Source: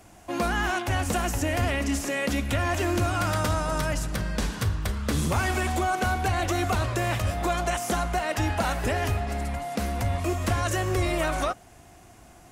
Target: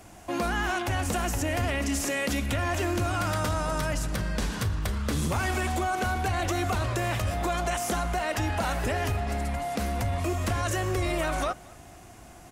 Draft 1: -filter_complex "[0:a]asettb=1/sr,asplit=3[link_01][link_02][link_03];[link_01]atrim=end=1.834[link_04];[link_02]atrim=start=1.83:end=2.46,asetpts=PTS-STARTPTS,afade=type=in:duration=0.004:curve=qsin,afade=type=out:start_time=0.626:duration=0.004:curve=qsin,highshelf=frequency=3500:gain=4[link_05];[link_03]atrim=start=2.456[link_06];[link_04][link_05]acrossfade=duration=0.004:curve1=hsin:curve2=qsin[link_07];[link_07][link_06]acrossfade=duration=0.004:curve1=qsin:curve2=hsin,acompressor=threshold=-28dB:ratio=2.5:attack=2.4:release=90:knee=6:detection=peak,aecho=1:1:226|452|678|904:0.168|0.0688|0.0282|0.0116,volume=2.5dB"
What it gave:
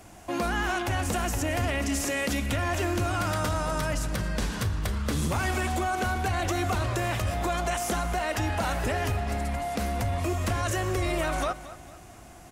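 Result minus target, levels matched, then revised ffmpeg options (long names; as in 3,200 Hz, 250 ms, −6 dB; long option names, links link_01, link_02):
echo-to-direct +9.5 dB
-filter_complex "[0:a]asettb=1/sr,asplit=3[link_01][link_02][link_03];[link_01]atrim=end=1.834[link_04];[link_02]atrim=start=1.83:end=2.46,asetpts=PTS-STARTPTS,afade=type=in:duration=0.004:curve=qsin,afade=type=out:start_time=0.626:duration=0.004:curve=qsin,highshelf=frequency=3500:gain=4[link_05];[link_03]atrim=start=2.456[link_06];[link_04][link_05]acrossfade=duration=0.004:curve1=hsin:curve2=qsin[link_07];[link_07][link_06]acrossfade=duration=0.004:curve1=qsin:curve2=hsin,acompressor=threshold=-28dB:ratio=2.5:attack=2.4:release=90:knee=6:detection=peak,aecho=1:1:226|452:0.0562|0.0231,volume=2.5dB"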